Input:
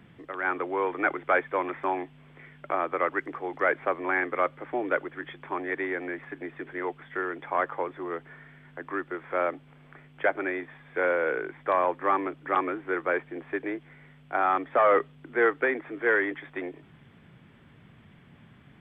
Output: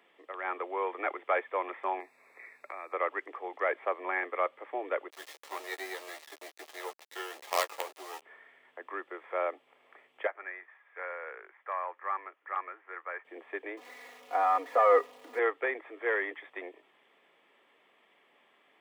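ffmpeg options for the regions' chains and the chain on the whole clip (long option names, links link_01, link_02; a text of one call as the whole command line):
ffmpeg -i in.wav -filter_complex "[0:a]asettb=1/sr,asplit=3[link_01][link_02][link_03];[link_01]atrim=end=2.004[link_04];[link_02]atrim=start=2:end=2.93,asetpts=PTS-STARTPTS,afade=type=in:duration=0.004:curve=qsin,afade=type=out:start_time=0.926:duration=0.004:curve=qsin,asuperstop=centerf=3100:order=8:qfactor=2.5,highshelf=frequency=2200:gain=11.5,acrossover=split=190|3000[link_05][link_06][link_07];[link_06]acompressor=threshold=-35dB:ratio=6:attack=3.2:release=140:knee=2.83:detection=peak[link_08];[link_05][link_08][link_07]amix=inputs=3:normalize=0[link_09];[link_03]atrim=start=2.926[link_10];[link_04][link_09]acrossfade=duration=0.004:curve1=hsin:curve2=qsin[link_11];[link_11][link_10]acrossfade=duration=0.004:curve1=qsin:curve2=hsin,asettb=1/sr,asplit=3[link_12][link_13][link_14];[link_12]atrim=end=5.104[link_15];[link_13]atrim=start=5.1:end=8.22,asetpts=PTS-STARTPTS,afade=type=in:duration=0.004:curve=qsin,afade=type=out:start_time=3.116:duration=0.004:curve=qsin,acrusher=bits=4:dc=4:mix=0:aa=0.000001,asplit=2[link_16][link_17];[link_17]adelay=13,volume=-6dB[link_18];[link_16][link_18]amix=inputs=2:normalize=0,atrim=end_sample=137592[link_19];[link_14]atrim=start=8.216[link_20];[link_15][link_19]acrossfade=duration=0.004:curve1=hsin:curve2=qsin[link_21];[link_21][link_20]acrossfade=duration=0.004:curve1=qsin:curve2=hsin,asettb=1/sr,asplit=3[link_22][link_23][link_24];[link_22]atrim=end=10.274[link_25];[link_23]atrim=start=10.27:end=13.25,asetpts=PTS-STARTPTS,afade=type=in:duration=0.004:curve=qsin,afade=type=out:start_time=2.976:duration=0.004:curve=qsin,bandpass=frequency=1600:width_type=q:width=1.7,aemphasis=mode=reproduction:type=75fm[link_26];[link_24]atrim=start=13.246[link_27];[link_25][link_26]acrossfade=duration=0.004:curve1=hsin:curve2=qsin[link_28];[link_28][link_27]acrossfade=duration=0.004:curve1=qsin:curve2=hsin,asettb=1/sr,asplit=3[link_29][link_30][link_31];[link_29]atrim=end=13.774[link_32];[link_30]atrim=start=13.77:end=15.39,asetpts=PTS-STARTPTS,afade=type=in:duration=0.004:curve=qsin,afade=type=out:start_time=1.616:duration=0.004:curve=qsin,aeval=exprs='val(0)+0.5*0.0119*sgn(val(0))':channel_layout=same,highshelf=frequency=2600:gain=-9.5,aecho=1:1:4.1:0.91,atrim=end_sample=71442[link_33];[link_31]atrim=start=15.386[link_34];[link_32][link_33]acrossfade=duration=0.004:curve1=hsin:curve2=qsin[link_35];[link_35][link_34]acrossfade=duration=0.004:curve1=qsin:curve2=hsin,highpass=frequency=420:width=0.5412,highpass=frequency=420:width=1.3066,bandreject=frequency=1500:width=5.4,volume=-3.5dB" out.wav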